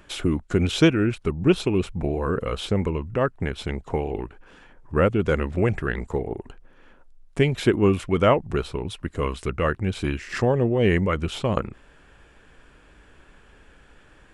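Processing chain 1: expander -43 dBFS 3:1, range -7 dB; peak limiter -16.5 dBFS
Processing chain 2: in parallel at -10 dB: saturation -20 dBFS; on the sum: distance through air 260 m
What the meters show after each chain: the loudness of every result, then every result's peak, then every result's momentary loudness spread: -28.0 LUFS, -23.0 LUFS; -16.5 dBFS, -5.5 dBFS; 7 LU, 10 LU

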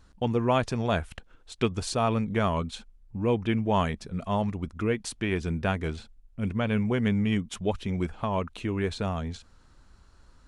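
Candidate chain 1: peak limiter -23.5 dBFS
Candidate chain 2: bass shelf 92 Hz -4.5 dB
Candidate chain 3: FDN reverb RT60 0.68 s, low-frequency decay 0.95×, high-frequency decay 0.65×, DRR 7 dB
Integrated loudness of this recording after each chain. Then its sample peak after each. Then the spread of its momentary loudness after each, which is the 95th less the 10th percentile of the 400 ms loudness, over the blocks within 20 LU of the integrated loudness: -33.5 LUFS, -29.5 LUFS, -28.0 LUFS; -23.5 dBFS, -11.5 dBFS, -12.0 dBFS; 7 LU, 10 LU, 10 LU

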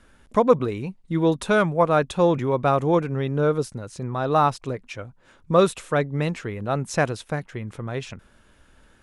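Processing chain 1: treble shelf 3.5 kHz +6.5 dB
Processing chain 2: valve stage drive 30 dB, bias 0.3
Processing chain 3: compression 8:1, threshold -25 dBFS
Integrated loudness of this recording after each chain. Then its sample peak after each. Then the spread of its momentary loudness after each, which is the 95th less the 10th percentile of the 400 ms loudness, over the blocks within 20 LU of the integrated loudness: -23.0 LUFS, -34.5 LUFS, -31.5 LUFS; -3.0 dBFS, -27.5 dBFS, -14.5 dBFS; 13 LU, 5 LU, 6 LU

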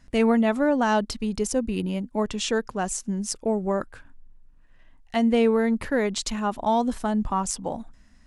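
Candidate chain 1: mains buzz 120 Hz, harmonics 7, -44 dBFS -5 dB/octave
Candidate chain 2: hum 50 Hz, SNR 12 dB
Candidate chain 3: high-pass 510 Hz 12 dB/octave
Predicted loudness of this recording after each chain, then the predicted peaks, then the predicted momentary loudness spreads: -25.0 LUFS, -25.0 LUFS, -29.0 LUFS; -10.0 dBFS, -9.5 dBFS, -10.0 dBFS; 9 LU, 19 LU, 8 LU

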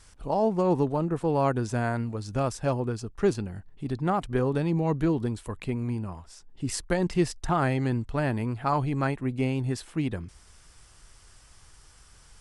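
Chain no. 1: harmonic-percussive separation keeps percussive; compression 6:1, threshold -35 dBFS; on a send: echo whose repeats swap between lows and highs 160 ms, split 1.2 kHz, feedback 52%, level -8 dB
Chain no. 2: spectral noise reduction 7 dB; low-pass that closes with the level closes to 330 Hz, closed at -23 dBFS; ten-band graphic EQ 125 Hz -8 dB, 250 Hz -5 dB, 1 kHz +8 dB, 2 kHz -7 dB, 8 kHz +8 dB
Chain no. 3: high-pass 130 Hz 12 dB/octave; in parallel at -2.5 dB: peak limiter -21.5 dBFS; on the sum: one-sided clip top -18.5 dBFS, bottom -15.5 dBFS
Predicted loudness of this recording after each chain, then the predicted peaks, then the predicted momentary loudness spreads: -41.5 LUFS, -36.0 LUFS, -26.0 LUFS; -22.5 dBFS, -13.0 dBFS, -15.0 dBFS; 20 LU, 21 LU, 8 LU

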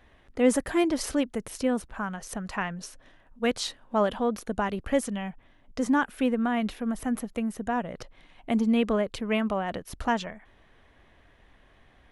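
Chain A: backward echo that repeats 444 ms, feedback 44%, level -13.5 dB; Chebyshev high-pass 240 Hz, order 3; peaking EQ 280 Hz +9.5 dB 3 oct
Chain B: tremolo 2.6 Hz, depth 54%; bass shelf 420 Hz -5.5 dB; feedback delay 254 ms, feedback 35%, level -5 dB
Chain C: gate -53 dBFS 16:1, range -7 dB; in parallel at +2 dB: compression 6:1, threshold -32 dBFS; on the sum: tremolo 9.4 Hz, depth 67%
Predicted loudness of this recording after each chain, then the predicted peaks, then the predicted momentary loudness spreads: -21.5 LUFS, -32.5 LUFS, -28.5 LUFS; -3.5 dBFS, -15.0 dBFS, -10.5 dBFS; 16 LU, 11 LU, 12 LU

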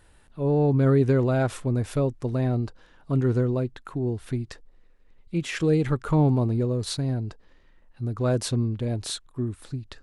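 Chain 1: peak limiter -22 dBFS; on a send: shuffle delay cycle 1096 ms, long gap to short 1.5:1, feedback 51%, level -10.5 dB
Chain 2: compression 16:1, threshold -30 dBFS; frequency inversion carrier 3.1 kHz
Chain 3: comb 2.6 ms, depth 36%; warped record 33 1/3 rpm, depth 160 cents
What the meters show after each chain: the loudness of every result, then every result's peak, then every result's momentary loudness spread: -31.0 LUFS, -32.0 LUFS, -25.5 LUFS; -19.0 dBFS, -20.5 dBFS, -11.0 dBFS; 9 LU, 13 LU, 12 LU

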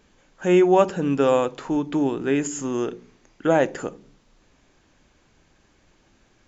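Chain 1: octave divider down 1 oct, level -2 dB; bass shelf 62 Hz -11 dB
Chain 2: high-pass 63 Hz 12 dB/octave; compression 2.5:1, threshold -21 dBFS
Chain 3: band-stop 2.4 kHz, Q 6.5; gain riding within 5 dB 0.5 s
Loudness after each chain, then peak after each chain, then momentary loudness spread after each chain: -21.5 LUFS, -26.0 LUFS, -22.0 LUFS; -3.0 dBFS, -10.0 dBFS, -4.5 dBFS; 11 LU, 8 LU, 10 LU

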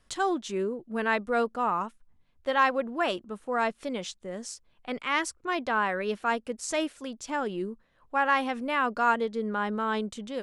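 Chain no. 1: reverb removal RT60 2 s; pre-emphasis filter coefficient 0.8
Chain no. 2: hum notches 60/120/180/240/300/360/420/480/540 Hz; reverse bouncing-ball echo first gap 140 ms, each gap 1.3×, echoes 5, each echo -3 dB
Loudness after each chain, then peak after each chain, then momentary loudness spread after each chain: -41.5 LUFS, -26.5 LUFS; -22.0 dBFS, -9.0 dBFS; 10 LU, 9 LU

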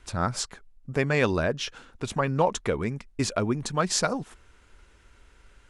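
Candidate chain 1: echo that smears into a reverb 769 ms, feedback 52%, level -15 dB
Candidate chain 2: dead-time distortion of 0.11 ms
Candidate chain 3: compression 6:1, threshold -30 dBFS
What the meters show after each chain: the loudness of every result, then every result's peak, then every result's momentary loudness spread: -27.5 LUFS, -28.0 LUFS, -35.5 LUFS; -7.0 dBFS, -7.0 dBFS, -17.0 dBFS; 18 LU, 14 LU, 6 LU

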